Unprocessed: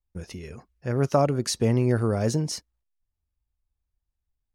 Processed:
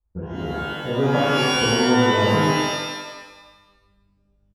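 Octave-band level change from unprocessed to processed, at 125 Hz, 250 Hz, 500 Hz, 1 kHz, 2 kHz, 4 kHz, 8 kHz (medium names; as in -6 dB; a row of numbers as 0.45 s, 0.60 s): 0.0 dB, +6.0 dB, +5.0 dB, +11.0 dB, +17.0 dB, +13.5 dB, +1.0 dB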